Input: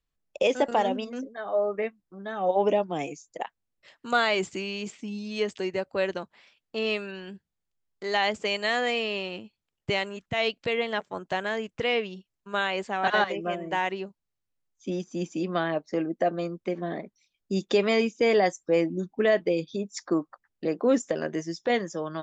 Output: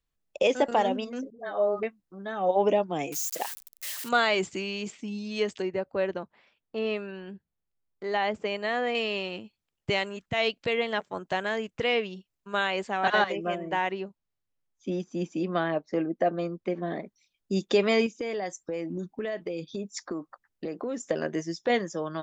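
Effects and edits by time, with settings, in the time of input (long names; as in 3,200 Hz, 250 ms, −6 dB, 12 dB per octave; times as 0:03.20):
0:01.30–0:01.83: all-pass dispersion highs, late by 94 ms, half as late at 550 Hz
0:03.12–0:04.09: spike at every zero crossing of −25.5 dBFS
0:05.62–0:08.95: low-pass filter 1,400 Hz 6 dB per octave
0:13.58–0:16.88: low-pass filter 3,600 Hz 6 dB per octave
0:18.06–0:21.07: downward compressor, threshold −29 dBFS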